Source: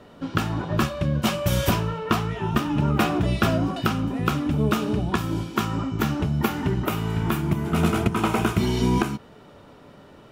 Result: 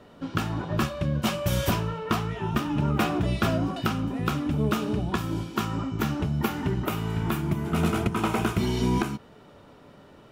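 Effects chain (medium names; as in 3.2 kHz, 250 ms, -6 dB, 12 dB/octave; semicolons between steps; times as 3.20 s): hard clipper -12.5 dBFS, distortion -23 dB; trim -3 dB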